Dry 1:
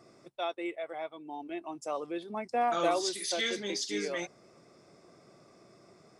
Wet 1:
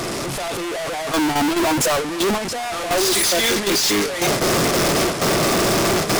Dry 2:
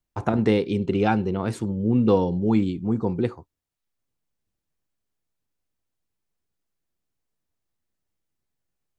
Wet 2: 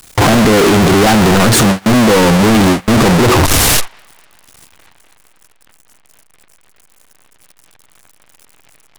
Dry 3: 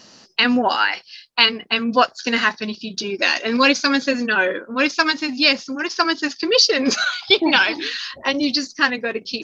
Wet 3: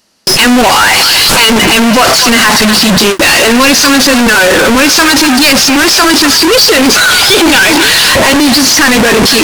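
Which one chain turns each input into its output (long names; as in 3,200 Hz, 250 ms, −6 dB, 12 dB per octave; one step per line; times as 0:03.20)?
linear delta modulator 64 kbit/s, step −16 dBFS
delay with a band-pass on its return 247 ms, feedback 55%, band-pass 1,500 Hz, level −10 dB
noise gate with hold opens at −17 dBFS
leveller curve on the samples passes 5
level −1 dB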